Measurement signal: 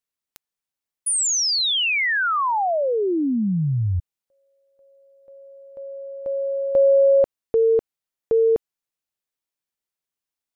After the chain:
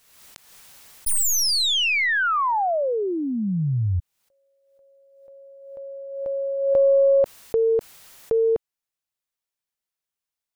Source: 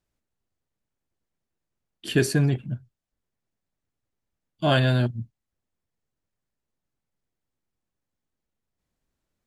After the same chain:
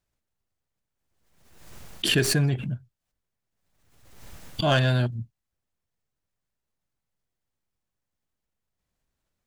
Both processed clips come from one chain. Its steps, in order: tracing distortion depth 0.028 ms; peaking EQ 290 Hz -4.5 dB 1.4 oct; swell ahead of each attack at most 52 dB/s

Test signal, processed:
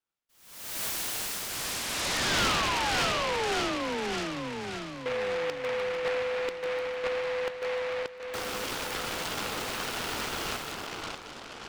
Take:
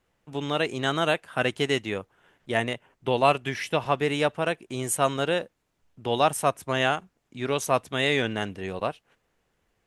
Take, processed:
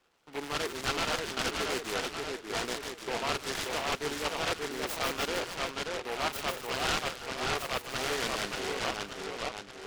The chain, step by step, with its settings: reverse; compression 10:1, threshold -28 dBFS; reverse; cabinet simulation 440–9600 Hz, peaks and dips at 600 Hz -6 dB, 1.4 kHz +10 dB, 2.7 kHz -6 dB, 4.3 kHz -9 dB, 8.4 kHz +7 dB; on a send: two-band feedback delay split 1.8 kHz, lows 580 ms, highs 150 ms, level -3.5 dB; on the sum: saturation -26 dBFS; treble shelf 3.1 kHz -7 dB; delay time shaken by noise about 1.5 kHz, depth 0.15 ms; trim +3.5 dB

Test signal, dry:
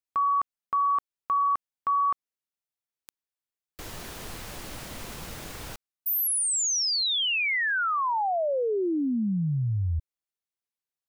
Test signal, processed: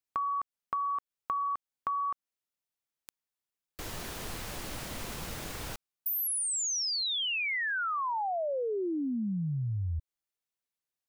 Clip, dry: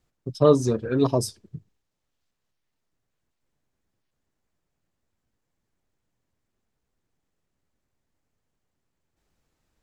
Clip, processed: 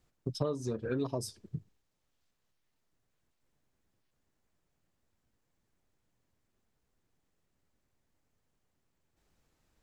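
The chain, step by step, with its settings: compression 10:1, threshold -30 dBFS

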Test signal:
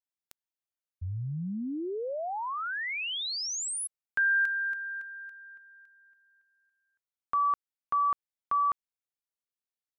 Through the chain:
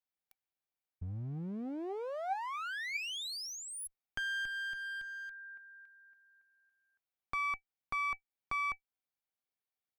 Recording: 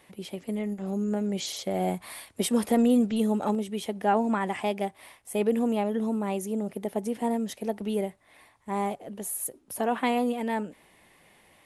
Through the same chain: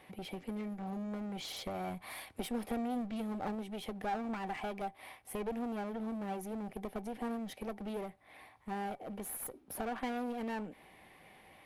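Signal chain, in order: peaking EQ 7.4 kHz -12 dB 1 oct; compression 2:1, threshold -38 dBFS; one-sided clip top -43 dBFS; small resonant body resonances 770/2300 Hz, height 10 dB, ringing for 95 ms

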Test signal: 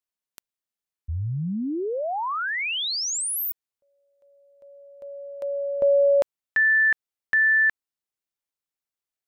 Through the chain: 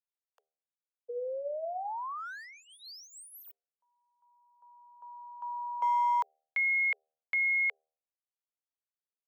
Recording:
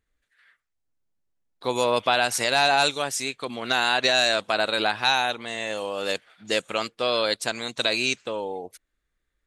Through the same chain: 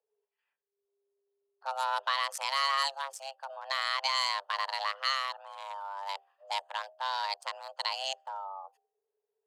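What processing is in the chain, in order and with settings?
local Wiener filter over 25 samples; de-hum 76.72 Hz, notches 5; frequency shift +400 Hz; trim -8 dB

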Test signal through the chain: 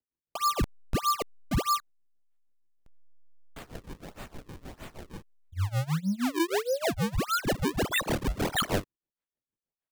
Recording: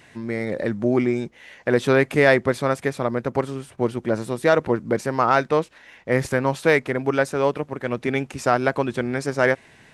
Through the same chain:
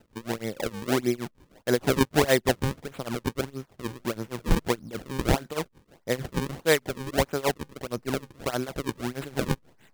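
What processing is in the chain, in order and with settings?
tremolo 6.4 Hz, depth 90%; in parallel at -6 dB: hysteresis with a dead band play -32.5 dBFS; on the sum: decimation with a swept rate 37×, swing 160% 1.6 Hz; trim -5.5 dB

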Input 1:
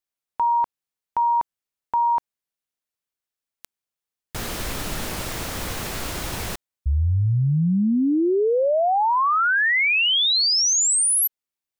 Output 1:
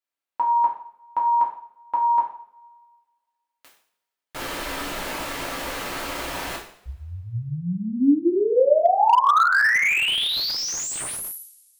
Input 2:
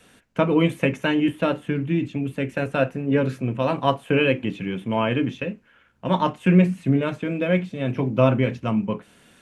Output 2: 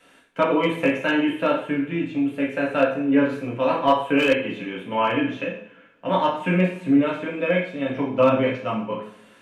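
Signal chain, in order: tone controls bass -13 dB, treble -7 dB; two-slope reverb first 0.52 s, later 1.9 s, from -25 dB, DRR -3.5 dB; slew-rate limiter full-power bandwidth 360 Hz; trim -2 dB

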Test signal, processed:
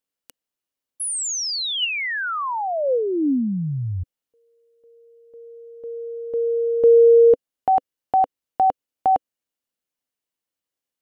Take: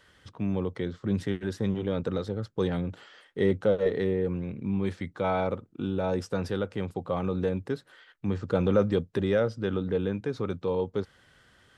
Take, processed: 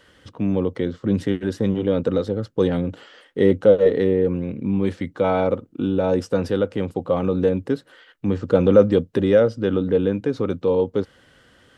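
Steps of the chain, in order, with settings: small resonant body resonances 280/500/2900 Hz, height 7 dB, ringing for 25 ms; trim +4.5 dB

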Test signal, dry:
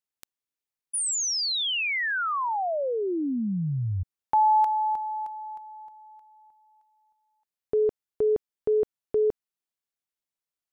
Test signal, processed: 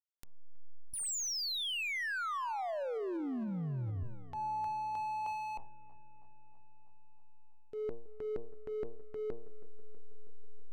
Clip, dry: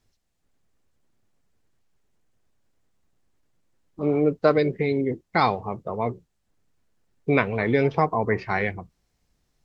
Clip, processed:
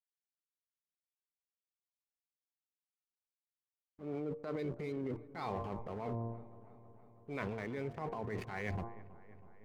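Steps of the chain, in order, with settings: hysteresis with a dead band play -32.5 dBFS; level rider gain up to 8 dB; de-hum 115.7 Hz, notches 10; reverse; compression 12:1, threshold -33 dBFS; reverse; transient shaper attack -5 dB, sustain +9 dB; on a send: feedback echo behind a low-pass 323 ms, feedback 67%, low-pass 1.7 kHz, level -18 dB; on the sum: trim -3 dB

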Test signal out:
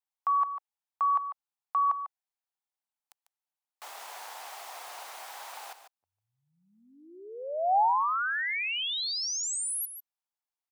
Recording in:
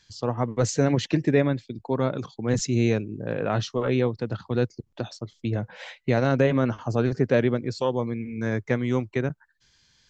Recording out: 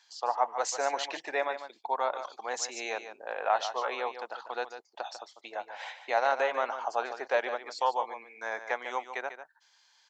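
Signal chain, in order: ladder high-pass 710 Hz, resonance 60%; on a send: delay 147 ms -10.5 dB; on the sum: trim +7.5 dB

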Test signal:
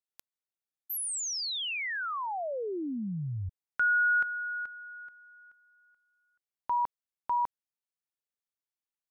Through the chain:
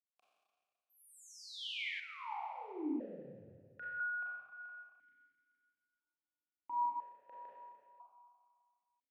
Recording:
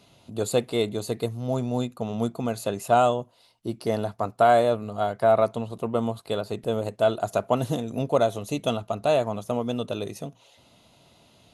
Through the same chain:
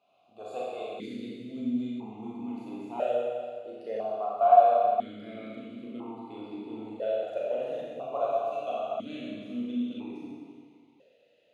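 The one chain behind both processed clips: Schroeder reverb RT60 1.9 s, combs from 29 ms, DRR -6.5 dB; stepped vowel filter 1 Hz; trim -4 dB

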